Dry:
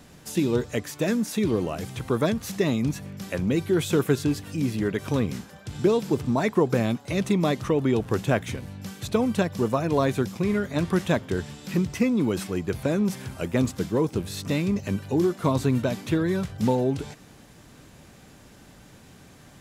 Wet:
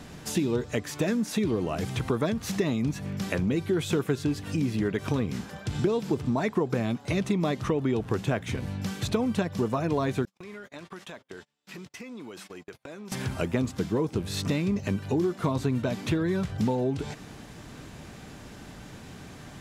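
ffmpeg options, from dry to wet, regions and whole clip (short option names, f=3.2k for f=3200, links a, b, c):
-filter_complex "[0:a]asettb=1/sr,asplit=3[a][b][c];[a]atrim=end=10.254[d];[b]atrim=start=10.25:end=13.12,asetpts=PTS-STARTPTS,afade=t=in:d=0.004:c=qsin,afade=t=out:st=2.866:d=0.004:c=qsin,highpass=f=770:p=1,agate=range=-40dB:threshold=-41dB:ratio=16:release=100:detection=peak,acompressor=threshold=-47dB:ratio=4:attack=3.2:release=140:knee=1:detection=peak[e];[c]atrim=start=13.116[f];[d][e]acrossfade=d=0.004:c1=hsin:c2=qsin[g];[g][f]acrossfade=d=0.004:c1=qsin:c2=hsin,highshelf=f=8.9k:g=-9.5,bandreject=f=540:w=17,acompressor=threshold=-32dB:ratio=3,volume=6dB"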